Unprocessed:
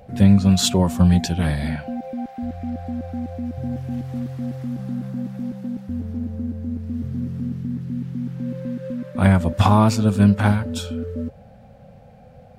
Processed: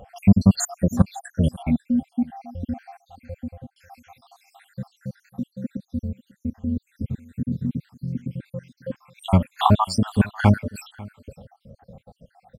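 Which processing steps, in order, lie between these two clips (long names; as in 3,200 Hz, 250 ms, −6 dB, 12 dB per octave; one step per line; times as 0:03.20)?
time-frequency cells dropped at random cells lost 77%
0:01.70–0:02.28: octave-band graphic EQ 125/250/500/1,000/2,000/4,000 Hz −5/+10/−8/−9/−5/−4 dB
0:03.28–0:03.76: fade out
single-tap delay 544 ms −22 dB
level +2.5 dB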